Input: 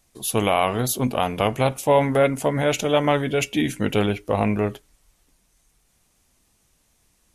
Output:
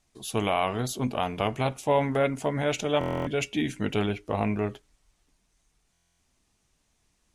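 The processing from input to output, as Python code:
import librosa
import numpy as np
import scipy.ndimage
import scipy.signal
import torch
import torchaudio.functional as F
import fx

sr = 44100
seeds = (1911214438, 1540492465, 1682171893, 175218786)

y = scipy.signal.sosfilt(scipy.signal.butter(2, 8000.0, 'lowpass', fs=sr, output='sos'), x)
y = fx.notch(y, sr, hz=520.0, q=12.0)
y = fx.buffer_glitch(y, sr, at_s=(2.99, 5.92), block=1024, repeats=11)
y = y * librosa.db_to_amplitude(-5.5)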